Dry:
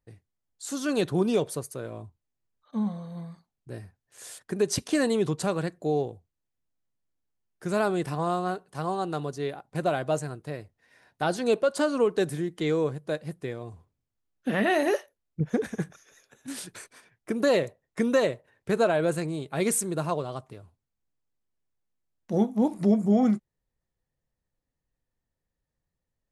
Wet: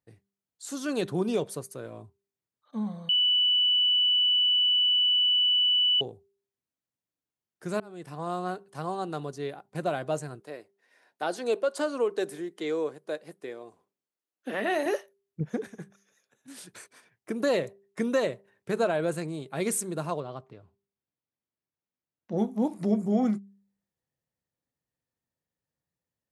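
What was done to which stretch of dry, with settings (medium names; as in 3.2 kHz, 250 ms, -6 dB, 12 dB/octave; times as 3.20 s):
3.09–6.01 s: bleep 2.97 kHz -17 dBFS
7.80–8.44 s: fade in
10.40–14.86 s: Chebyshev high-pass 360 Hz
15.44–16.80 s: dip -8 dB, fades 0.32 s
20.20–22.38 s: distance through air 150 m
whole clip: high-pass 110 Hz; de-hum 198.1 Hz, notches 2; trim -3 dB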